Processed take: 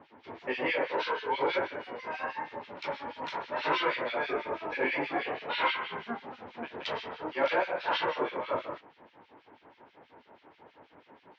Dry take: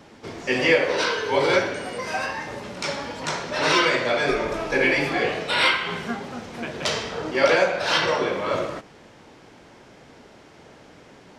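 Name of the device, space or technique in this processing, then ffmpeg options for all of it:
guitar amplifier with harmonic tremolo: -filter_complex "[0:a]acrossover=split=2000[a][b];[a]aeval=exprs='val(0)*(1-1/2+1/2*cos(2*PI*6.2*n/s))':c=same[c];[b]aeval=exprs='val(0)*(1-1/2-1/2*cos(2*PI*6.2*n/s))':c=same[d];[c][d]amix=inputs=2:normalize=0,asoftclip=type=tanh:threshold=-14dB,highpass=110,equalizer=f=130:t=q:w=4:g=-9,equalizer=f=190:t=q:w=4:g=-8,equalizer=f=920:t=q:w=4:g=8,lowpass=f=3.6k:w=0.5412,lowpass=f=3.6k:w=1.3066,volume=-4.5dB"

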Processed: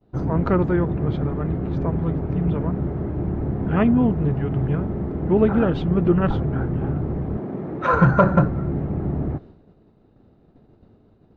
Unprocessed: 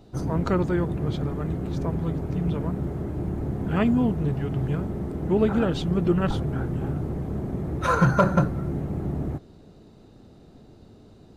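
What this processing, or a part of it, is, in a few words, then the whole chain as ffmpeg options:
hearing-loss simulation: -filter_complex "[0:a]lowpass=2.2k,agate=range=-33dB:threshold=-42dB:ratio=3:detection=peak,asettb=1/sr,asplit=3[a][b][c];[a]atrim=end=7.374[d];[b]atrim=start=7.37:end=7.93,asetpts=PTS-STARTPTS,afade=t=in:d=0.004:c=qsin,afade=t=out:st=0.556:d=0.004:c=qsin,highpass=200[e];[c]atrim=start=7.926[f];[d][e]acrossfade=d=0.004:c1=hsin:c2=qsin[g];[g][f]acrossfade=d=0.004:c1=qsin:c2=hsin,volume=4dB"

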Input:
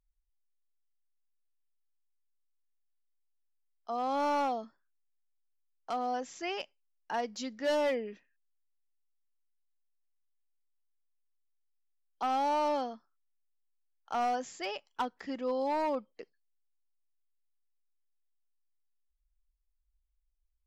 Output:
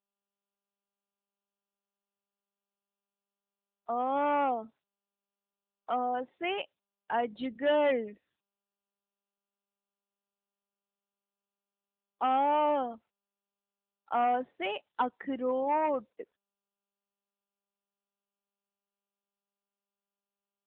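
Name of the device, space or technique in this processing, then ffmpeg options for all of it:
mobile call with aggressive noise cancelling: -af "highpass=120,afftdn=nr=20:nf=-50,volume=4dB" -ar 8000 -c:a libopencore_amrnb -b:a 10200

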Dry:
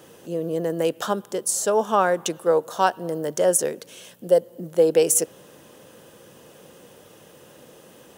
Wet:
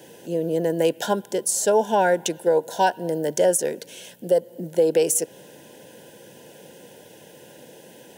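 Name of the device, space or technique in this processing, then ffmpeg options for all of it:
PA system with an anti-feedback notch: -af "highpass=110,asuperstop=centerf=1200:order=20:qfactor=3.3,alimiter=limit=-12dB:level=0:latency=1:release=192,volume=2.5dB"

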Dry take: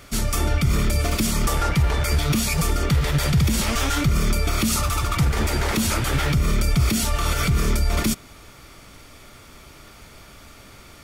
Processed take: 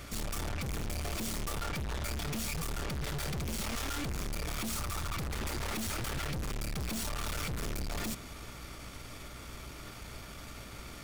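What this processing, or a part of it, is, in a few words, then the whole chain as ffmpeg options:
valve amplifier with mains hum: -af "aeval=exprs='(tanh(56.2*val(0)+0.4)-tanh(0.4))/56.2':c=same,aeval=exprs='val(0)+0.00282*(sin(2*PI*60*n/s)+sin(2*PI*2*60*n/s)/2+sin(2*PI*3*60*n/s)/3+sin(2*PI*4*60*n/s)/4+sin(2*PI*5*60*n/s)/5)':c=same"

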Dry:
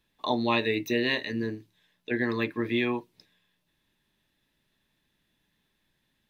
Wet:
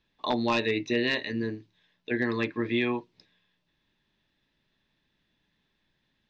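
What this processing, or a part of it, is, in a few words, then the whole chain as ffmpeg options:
synthesiser wavefolder: -af "aeval=exprs='0.158*(abs(mod(val(0)/0.158+3,4)-2)-1)':c=same,lowpass=f=5.6k:w=0.5412,lowpass=f=5.6k:w=1.3066"

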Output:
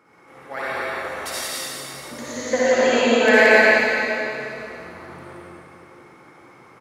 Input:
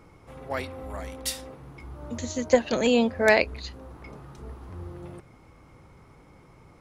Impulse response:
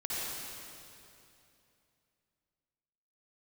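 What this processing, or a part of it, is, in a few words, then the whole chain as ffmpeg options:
stadium PA: -filter_complex "[0:a]highpass=240,equalizer=f=1.6k:t=o:w=1:g=7.5,aecho=1:1:174.9|279.9:0.794|0.282[a];[1:a]atrim=start_sample=2205[b];[a][b]afir=irnorm=-1:irlink=0,volume=-1dB"

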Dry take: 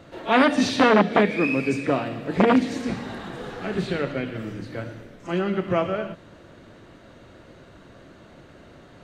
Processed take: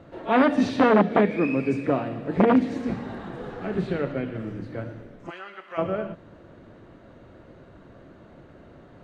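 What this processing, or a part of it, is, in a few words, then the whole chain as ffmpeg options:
through cloth: -filter_complex "[0:a]highshelf=f=2.4k:g=-14,asplit=3[a][b][c];[a]afade=t=out:st=5.29:d=0.02[d];[b]highpass=1.3k,afade=t=in:st=5.29:d=0.02,afade=t=out:st=5.77:d=0.02[e];[c]afade=t=in:st=5.77:d=0.02[f];[d][e][f]amix=inputs=3:normalize=0"

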